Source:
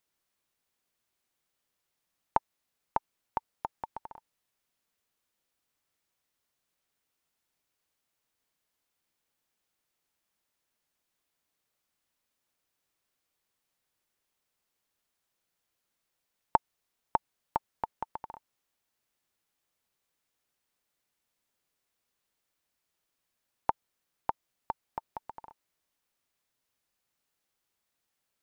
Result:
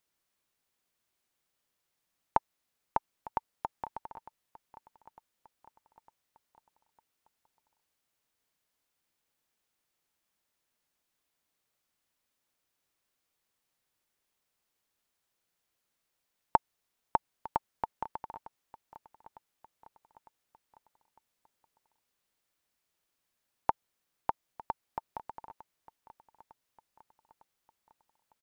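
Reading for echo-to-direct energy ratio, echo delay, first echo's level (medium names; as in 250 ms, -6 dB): -17.5 dB, 904 ms, -19.0 dB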